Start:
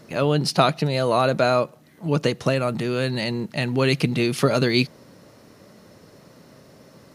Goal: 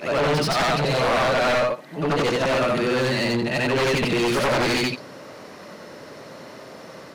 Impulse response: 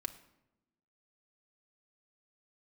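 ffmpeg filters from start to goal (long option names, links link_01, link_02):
-filter_complex "[0:a]afftfilt=real='re':imag='-im':win_size=8192:overlap=0.75,aeval=exprs='0.0841*(abs(mod(val(0)/0.0841+3,4)-2)-1)':channel_layout=same,asplit=2[link_01][link_02];[link_02]highpass=frequency=720:poles=1,volume=18dB,asoftclip=type=tanh:threshold=-21.5dB[link_03];[link_01][link_03]amix=inputs=2:normalize=0,lowpass=frequency=2600:poles=1,volume=-6dB,volume=6.5dB"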